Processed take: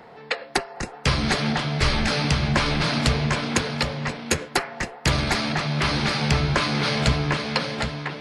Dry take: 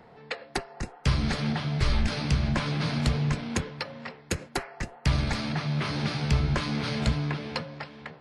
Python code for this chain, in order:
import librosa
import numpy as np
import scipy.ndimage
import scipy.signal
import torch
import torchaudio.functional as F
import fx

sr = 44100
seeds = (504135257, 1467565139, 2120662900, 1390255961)

p1 = fx.low_shelf(x, sr, hz=200.0, db=-10.0)
p2 = p1 + fx.echo_single(p1, sr, ms=763, db=-6.0, dry=0)
y = p2 * librosa.db_to_amplitude(8.5)